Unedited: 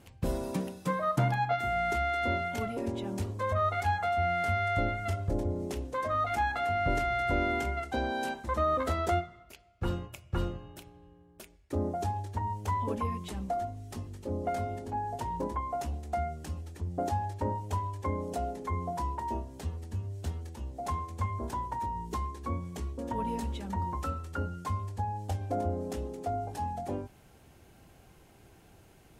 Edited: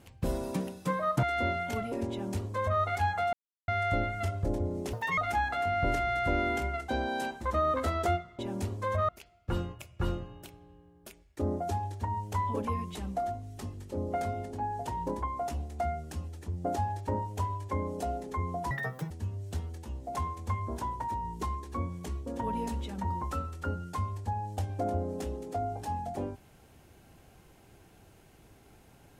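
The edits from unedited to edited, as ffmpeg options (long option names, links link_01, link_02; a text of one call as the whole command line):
ffmpeg -i in.wav -filter_complex "[0:a]asplit=10[link_01][link_02][link_03][link_04][link_05][link_06][link_07][link_08][link_09][link_10];[link_01]atrim=end=1.232[link_11];[link_02]atrim=start=2.078:end=4.18,asetpts=PTS-STARTPTS,afade=type=out:start_time=2.098:duration=0.004:curve=hsin[link_12];[link_03]atrim=start=4.18:end=4.53,asetpts=PTS-STARTPTS,volume=0[link_13];[link_04]atrim=start=4.53:end=5.784,asetpts=PTS-STARTPTS,afade=type=in:duration=0.004:curve=hsin[link_14];[link_05]atrim=start=5.78:end=6.21,asetpts=PTS-STARTPTS,asetrate=76734,aresample=44100,atrim=end_sample=10898,asetpts=PTS-STARTPTS[link_15];[link_06]atrim=start=6.206:end=9.422[link_16];[link_07]atrim=start=2.958:end=3.662[link_17];[link_08]atrim=start=9.418:end=19.044[link_18];[link_09]atrim=start=19.04:end=19.82,asetpts=PTS-STARTPTS,asetrate=86436,aresample=44100[link_19];[link_10]atrim=start=19.816[link_20];[link_12][link_13][link_14]concat=n=3:v=0:a=1[link_21];[link_11][link_21]acrossfade=duration=0.004:curve1=hsin:curve2=hsin[link_22];[link_22][link_15]acrossfade=duration=0.004:curve1=hsin:curve2=hsin[link_23];[link_23][link_16]acrossfade=duration=0.004:curve1=hsin:curve2=hsin[link_24];[link_24][link_17]acrossfade=duration=0.004:curve1=hsin:curve2=hsin[link_25];[link_25][link_18]acrossfade=duration=0.004:curve1=hsin:curve2=hsin[link_26];[link_26][link_19]acrossfade=duration=0.004:curve1=hsin:curve2=hsin[link_27];[link_27][link_20]acrossfade=duration=0.004:curve1=hsin:curve2=hsin" out.wav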